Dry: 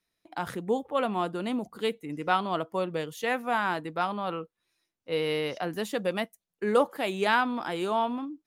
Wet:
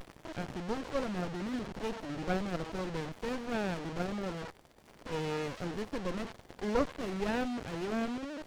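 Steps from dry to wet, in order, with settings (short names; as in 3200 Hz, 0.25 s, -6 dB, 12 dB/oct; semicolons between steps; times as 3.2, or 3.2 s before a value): delta modulation 32 kbps, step -29 dBFS; running maximum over 33 samples; gain -5.5 dB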